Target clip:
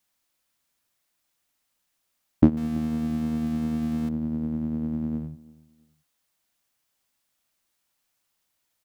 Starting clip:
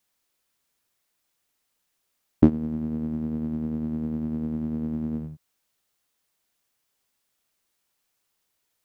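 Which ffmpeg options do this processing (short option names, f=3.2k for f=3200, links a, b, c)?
-filter_complex "[0:a]asettb=1/sr,asplit=3[a][b][c];[a]atrim=end=2.574[d];[b]atrim=start=2.57:end=4.09,asetpts=PTS-STARTPTS,afade=t=in:d=0.004:c=qsin,afade=t=out:st=1.516:d=0.004:c=qsin,aeval=exprs='val(0)+0.5*0.0178*sgn(val(0))':c=same[e];[c]atrim=start=4.086[f];[d][e]acrossfade=d=0.004:c1=hsin:c2=qsin[g];[g][f]acrossfade=d=0.004:c1=qsin:c2=hsin,equalizer=f=420:w=7.6:g=-10,asplit=2[h][i];[i]adelay=334,lowpass=f=2k:p=1,volume=-23dB,asplit=2[j][k];[k]adelay=334,lowpass=f=2k:p=1,volume=0.36[l];[j][l]amix=inputs=2:normalize=0[m];[h][m]amix=inputs=2:normalize=0"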